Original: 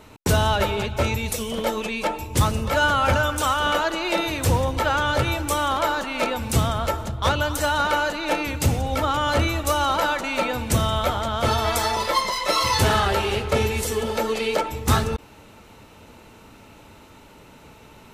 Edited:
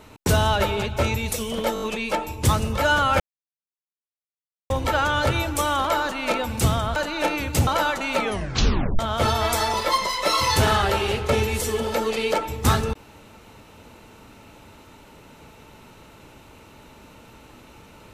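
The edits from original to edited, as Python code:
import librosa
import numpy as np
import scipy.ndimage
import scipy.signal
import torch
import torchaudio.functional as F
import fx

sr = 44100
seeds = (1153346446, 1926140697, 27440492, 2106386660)

y = fx.edit(x, sr, fx.stutter(start_s=1.74, slice_s=0.02, count=5),
    fx.silence(start_s=3.12, length_s=1.5),
    fx.cut(start_s=6.88, length_s=1.15),
    fx.cut(start_s=8.74, length_s=1.16),
    fx.tape_stop(start_s=10.42, length_s=0.8), tone=tone)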